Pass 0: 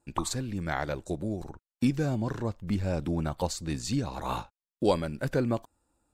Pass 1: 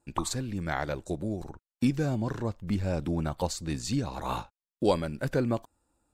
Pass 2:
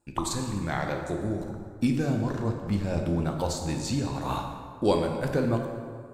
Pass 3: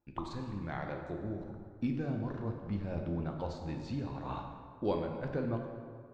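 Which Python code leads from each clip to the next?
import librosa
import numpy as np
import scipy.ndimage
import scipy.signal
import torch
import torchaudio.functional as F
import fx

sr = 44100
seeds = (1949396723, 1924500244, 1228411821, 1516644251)

y1 = x
y2 = fx.rev_plate(y1, sr, seeds[0], rt60_s=2.0, hf_ratio=0.6, predelay_ms=0, drr_db=2.5)
y3 = fx.air_absorb(y2, sr, metres=240.0)
y3 = y3 * 10.0 ** (-8.5 / 20.0)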